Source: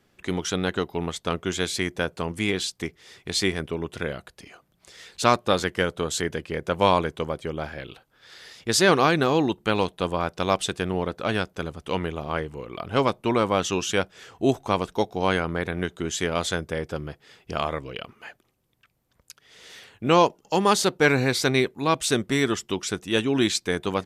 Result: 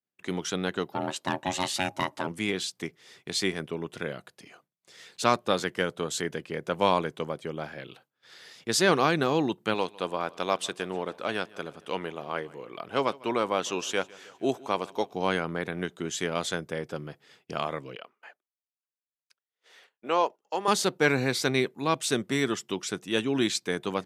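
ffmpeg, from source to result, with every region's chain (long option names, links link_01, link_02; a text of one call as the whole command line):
ffmpeg -i in.wav -filter_complex "[0:a]asettb=1/sr,asplit=3[link_01][link_02][link_03];[link_01]atrim=end=0.924[link_04];[link_02]atrim=start=0.92:end=2.27,asetpts=PTS-STARTPTS,afade=type=in:duration=0.004:curve=qsin,afade=type=out:start_time=1.346:duration=0.004:curve=qsin,asoftclip=type=hard:threshold=-14.5dB,acontrast=31,aeval=exprs='val(0)*sin(2*PI*460*n/s)':channel_layout=same[link_05];[link_03]atrim=start=2.266[link_06];[link_04][link_05]acrossfade=duration=0.004:curve1=hsin:curve2=qsin[link_07];[link_07][link_06]acrossfade=duration=0.004:curve1=qsin:curve2=hsin,asettb=1/sr,asplit=3[link_08][link_09][link_10];[link_08]atrim=end=9.744[link_11];[link_09]atrim=start=9.74:end=15.13,asetpts=PTS-STARTPTS,afade=type=in:duration=0.004:curve=qsin,afade=type=out:start_time=5.386:duration=0.004:curve=qsin,bass=frequency=250:gain=-8,treble=frequency=4000:gain=-1,aecho=1:1:152|304|456|608:0.075|0.0442|0.0261|0.0154,atrim=end_sample=237699[link_12];[link_10]atrim=start=15.126[link_13];[link_11][link_12]acrossfade=duration=0.004:curve1=hsin:curve2=qsin[link_14];[link_14][link_13]acrossfade=duration=0.004:curve1=qsin:curve2=hsin,asettb=1/sr,asplit=3[link_15][link_16][link_17];[link_15]atrim=end=17.954[link_18];[link_16]atrim=start=17.95:end=20.68,asetpts=PTS-STARTPTS,afade=type=in:duration=0.004:curve=qsin,afade=type=out:start_time=2.726:duration=0.004:curve=qsin,highpass=500,agate=range=-8dB:threshold=-50dB:ratio=16:release=100:detection=peak,highshelf=frequency=2600:gain=-10[link_19];[link_17]atrim=start=20.676[link_20];[link_18][link_19]acrossfade=duration=0.004:curve1=hsin:curve2=qsin[link_21];[link_21][link_20]acrossfade=duration=0.004:curve1=qsin:curve2=hsin,highpass=frequency=120:width=0.5412,highpass=frequency=120:width=1.3066,agate=range=-33dB:threshold=-49dB:ratio=3:detection=peak,volume=-4dB" out.wav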